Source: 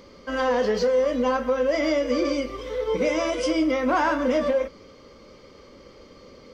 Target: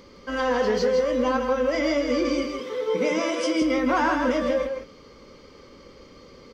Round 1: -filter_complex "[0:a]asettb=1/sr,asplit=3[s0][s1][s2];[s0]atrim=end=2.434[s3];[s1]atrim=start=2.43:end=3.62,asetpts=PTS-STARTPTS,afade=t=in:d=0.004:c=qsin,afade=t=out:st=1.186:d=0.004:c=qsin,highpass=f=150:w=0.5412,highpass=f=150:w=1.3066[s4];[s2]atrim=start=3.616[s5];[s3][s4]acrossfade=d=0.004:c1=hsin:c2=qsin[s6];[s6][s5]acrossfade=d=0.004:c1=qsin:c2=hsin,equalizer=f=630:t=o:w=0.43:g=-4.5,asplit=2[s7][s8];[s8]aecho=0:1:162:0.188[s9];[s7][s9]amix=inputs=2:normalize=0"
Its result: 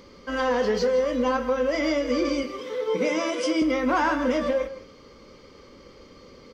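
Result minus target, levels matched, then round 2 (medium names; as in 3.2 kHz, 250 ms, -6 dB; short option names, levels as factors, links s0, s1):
echo-to-direct -8.5 dB
-filter_complex "[0:a]asettb=1/sr,asplit=3[s0][s1][s2];[s0]atrim=end=2.434[s3];[s1]atrim=start=2.43:end=3.62,asetpts=PTS-STARTPTS,afade=t=in:d=0.004:c=qsin,afade=t=out:st=1.186:d=0.004:c=qsin,highpass=f=150:w=0.5412,highpass=f=150:w=1.3066[s4];[s2]atrim=start=3.616[s5];[s3][s4]acrossfade=d=0.004:c1=hsin:c2=qsin[s6];[s6][s5]acrossfade=d=0.004:c1=qsin:c2=hsin,equalizer=f=630:t=o:w=0.43:g=-4.5,asplit=2[s7][s8];[s8]aecho=0:1:162:0.501[s9];[s7][s9]amix=inputs=2:normalize=0"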